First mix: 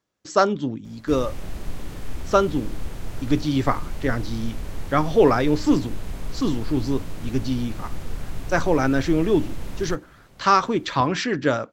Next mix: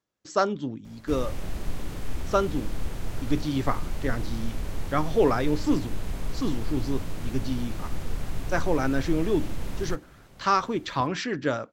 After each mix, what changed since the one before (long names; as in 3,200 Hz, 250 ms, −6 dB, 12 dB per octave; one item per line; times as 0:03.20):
speech −5.5 dB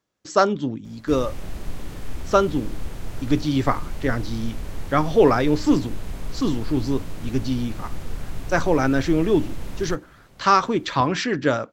speech +6.0 dB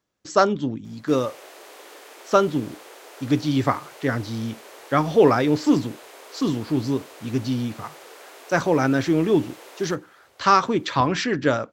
background: add Butterworth high-pass 390 Hz 36 dB per octave